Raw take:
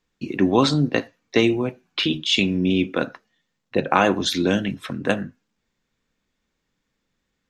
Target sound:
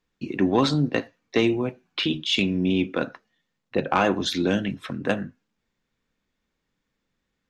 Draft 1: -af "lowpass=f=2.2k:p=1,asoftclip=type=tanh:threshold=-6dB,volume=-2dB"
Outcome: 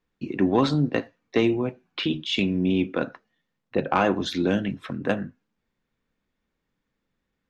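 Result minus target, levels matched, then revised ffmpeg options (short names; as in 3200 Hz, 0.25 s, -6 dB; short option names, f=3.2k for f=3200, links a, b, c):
8000 Hz band -5.5 dB
-af "lowpass=f=5.8k:p=1,asoftclip=type=tanh:threshold=-6dB,volume=-2dB"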